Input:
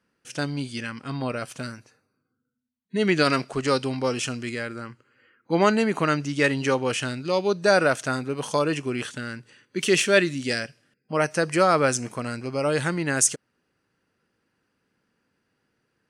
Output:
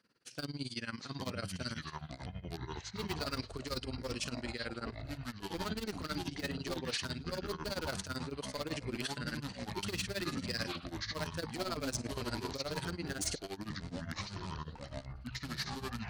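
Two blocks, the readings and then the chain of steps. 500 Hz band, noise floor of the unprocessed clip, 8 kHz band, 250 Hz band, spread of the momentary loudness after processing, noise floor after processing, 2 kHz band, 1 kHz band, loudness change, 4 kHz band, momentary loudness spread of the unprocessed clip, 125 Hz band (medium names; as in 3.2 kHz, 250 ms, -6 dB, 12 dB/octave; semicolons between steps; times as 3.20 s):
-18.0 dB, -76 dBFS, -14.5 dB, -13.5 dB, 7 LU, -53 dBFS, -15.5 dB, -15.5 dB, -15.5 dB, -7.5 dB, 14 LU, -10.0 dB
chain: high-pass 64 Hz 24 dB/octave; dynamic bell 750 Hz, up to -5 dB, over -42 dBFS, Q 4.3; in parallel at -4.5 dB: integer overflow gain 16 dB; on the sum: tremolo 18 Hz, depth 89%; reverse; compression 10:1, threshold -34 dBFS, peak gain reduction 19.5 dB; reverse; ever faster or slower copies 623 ms, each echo -7 st, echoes 3; peaking EQ 4.4 kHz +10.5 dB 0.5 oct; trim -3 dB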